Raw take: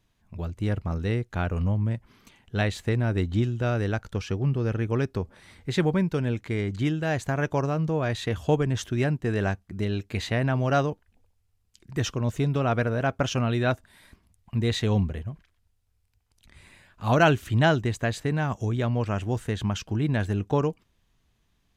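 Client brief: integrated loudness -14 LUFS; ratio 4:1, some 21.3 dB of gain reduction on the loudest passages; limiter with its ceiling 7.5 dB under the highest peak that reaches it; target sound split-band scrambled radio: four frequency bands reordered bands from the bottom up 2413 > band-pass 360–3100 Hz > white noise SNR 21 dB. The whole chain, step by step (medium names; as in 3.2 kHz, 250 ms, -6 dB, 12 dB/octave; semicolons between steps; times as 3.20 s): compression 4:1, threshold -41 dBFS; peak limiter -33.5 dBFS; four frequency bands reordered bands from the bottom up 2413; band-pass 360–3100 Hz; white noise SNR 21 dB; trim +29 dB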